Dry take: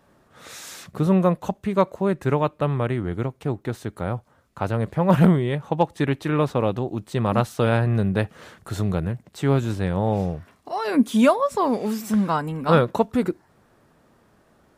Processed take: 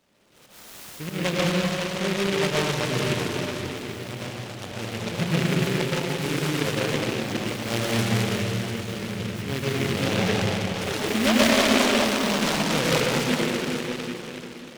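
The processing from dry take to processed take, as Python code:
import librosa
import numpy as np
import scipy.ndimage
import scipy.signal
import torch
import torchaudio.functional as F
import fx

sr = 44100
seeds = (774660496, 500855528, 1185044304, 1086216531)

y = fx.low_shelf(x, sr, hz=98.0, db=-10.5)
y = fx.auto_swell(y, sr, attack_ms=132.0)
y = fx.rev_plate(y, sr, seeds[0], rt60_s=4.4, hf_ratio=0.8, predelay_ms=100, drr_db=-8.0)
y = fx.noise_mod_delay(y, sr, seeds[1], noise_hz=2100.0, depth_ms=0.2)
y = F.gain(torch.from_numpy(y), -7.5).numpy()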